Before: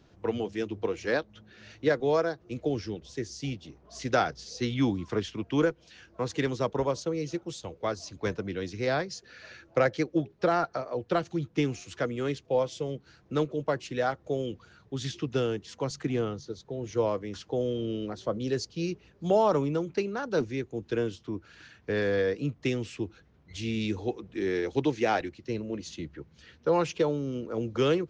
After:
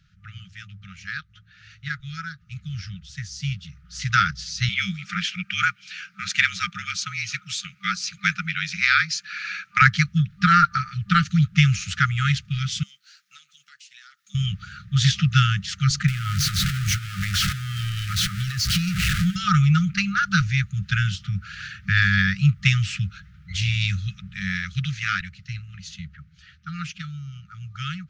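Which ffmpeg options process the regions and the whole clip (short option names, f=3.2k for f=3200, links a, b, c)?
-filter_complex "[0:a]asettb=1/sr,asplit=3[a][b][c];[a]atrim=end=4.694[d];[b]atrim=start=4.69:end=9.82,asetpts=PTS-STARTPTS,afade=t=in:d=0.004:c=qsin,afade=t=out:st=5.126:d=0.004:c=qsin,highpass=f=260:w=0.5412,highpass=f=260:w=1.3066,equalizer=f=2.4k:w=7:g=9,afreqshift=-35[e];[c]atrim=start=9.816[f];[d][e]acrossfade=d=0.004:c1=hsin:c2=qsin[g];[g][f]acrossfade=d=0.004:c1=qsin:c2=hsin,asettb=1/sr,asplit=3[h][i][j];[h]atrim=end=12.834[k];[i]atrim=start=12.83:end=14.35,asetpts=PTS-STARTPTS,afade=t=in:d=0.004:c=qsin,afade=t=out:st=1.516:d=0.004:c=qsin,highpass=f=920:p=1,aderivative,acompressor=threshold=-59dB:ratio=10:attack=3.2:release=140:knee=1:detection=peak[l];[j]atrim=start=14.346[m];[k][l]acrossfade=d=0.004:c1=hsin:c2=qsin[n];[n][m]acrossfade=d=0.004:c1=qsin:c2=hsin,asettb=1/sr,asplit=3[o][p][q];[o]atrim=end=16.084[r];[p]atrim=start=16.08:end=19.36,asetpts=PTS-STARTPTS,afade=t=in:d=0.004:c=qsin,afade=t=out:st=3.276:d=0.004:c=qsin,aeval=exprs='val(0)+0.5*0.0266*sgn(val(0))':c=same,acompressor=threshold=-34dB:ratio=12:attack=3.2:release=140:knee=1:detection=peak[s];[q]atrim=start=19.356[t];[r][s]acrossfade=d=0.004:c1=hsin:c2=qsin[u];[u][t]acrossfade=d=0.004:c1=qsin:c2=hsin,afftfilt=real='re*(1-between(b*sr/4096,200,1200))':imag='im*(1-between(b*sr/4096,200,1200))':win_size=4096:overlap=0.75,highshelf=f=5.6k:g=-6,dynaudnorm=f=270:g=31:m=16dB,volume=2dB"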